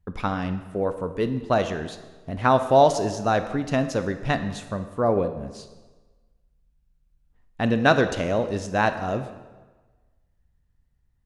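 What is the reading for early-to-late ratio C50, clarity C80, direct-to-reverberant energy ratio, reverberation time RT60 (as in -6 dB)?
11.0 dB, 12.5 dB, 9.0 dB, 1.3 s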